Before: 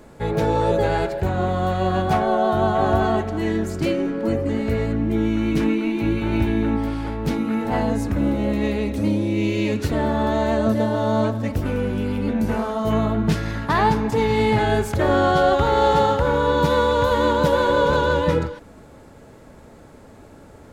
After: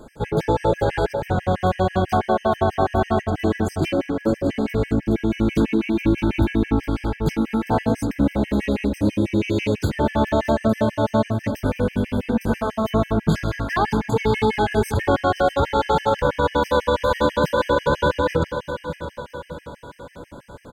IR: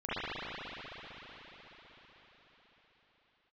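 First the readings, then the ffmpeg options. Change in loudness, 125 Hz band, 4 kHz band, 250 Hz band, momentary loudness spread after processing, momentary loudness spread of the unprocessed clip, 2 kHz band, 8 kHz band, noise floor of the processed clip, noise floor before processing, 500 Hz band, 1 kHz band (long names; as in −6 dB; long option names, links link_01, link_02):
−1.0 dB, 0.0 dB, −1.0 dB, 0.0 dB, 5 LU, 6 LU, −1.0 dB, −0.5 dB, −46 dBFS, −45 dBFS, −1.0 dB, −1.5 dB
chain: -af "aecho=1:1:618|1236|1854|2472|3090|3708:0.224|0.121|0.0653|0.0353|0.019|0.0103,alimiter=level_in=10.5dB:limit=-1dB:release=50:level=0:latency=1,afftfilt=real='re*gt(sin(2*PI*6.1*pts/sr)*(1-2*mod(floor(b*sr/1024/1600),2)),0)':imag='im*gt(sin(2*PI*6.1*pts/sr)*(1-2*mod(floor(b*sr/1024/1600),2)),0)':win_size=1024:overlap=0.75,volume=-7dB"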